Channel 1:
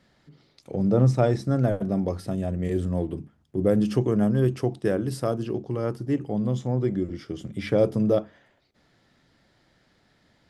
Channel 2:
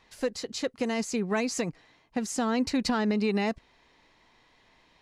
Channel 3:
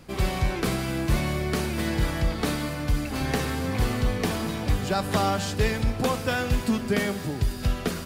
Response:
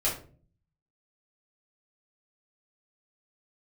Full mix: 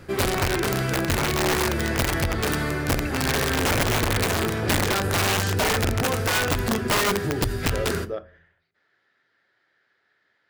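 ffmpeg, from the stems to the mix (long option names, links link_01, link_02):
-filter_complex "[0:a]bandpass=frequency=2000:width_type=q:width=0.69:csg=0,volume=-7dB,asplit=2[link_01][link_02];[link_02]volume=-23dB[link_03];[1:a]acrusher=samples=26:mix=1:aa=0.000001:lfo=1:lforange=26:lforate=1.6,aeval=exprs='0.0224*(abs(mod(val(0)/0.0224+3,4)-2)-1)':channel_layout=same,lowpass=frequency=2800:width=0.5412,lowpass=frequency=2800:width=1.3066,adelay=1750,volume=-5.5dB[link_04];[2:a]volume=-1dB,asplit=2[link_05][link_06];[link_06]volume=-19dB[link_07];[link_04][link_05]amix=inputs=2:normalize=0,bandreject=frequency=60:width_type=h:width=6,bandreject=frequency=120:width_type=h:width=6,bandreject=frequency=180:width_type=h:width=6,bandreject=frequency=240:width_type=h:width=6,bandreject=frequency=300:width_type=h:width=6,bandreject=frequency=360:width_type=h:width=6,bandreject=frequency=420:width_type=h:width=6,bandreject=frequency=480:width_type=h:width=6,bandreject=frequency=540:width_type=h:width=6,bandreject=frequency=600:width_type=h:width=6,alimiter=limit=-21.5dB:level=0:latency=1:release=19,volume=0dB[link_08];[3:a]atrim=start_sample=2205[link_09];[link_03][link_07]amix=inputs=2:normalize=0[link_10];[link_10][link_09]afir=irnorm=-1:irlink=0[link_11];[link_01][link_08][link_11]amix=inputs=3:normalize=0,equalizer=frequency=100:width_type=o:width=0.67:gain=9,equalizer=frequency=400:width_type=o:width=0.67:gain=10,equalizer=frequency=1600:width_type=o:width=0.67:gain=10,aeval=exprs='(mod(6.31*val(0)+1,2)-1)/6.31':channel_layout=same"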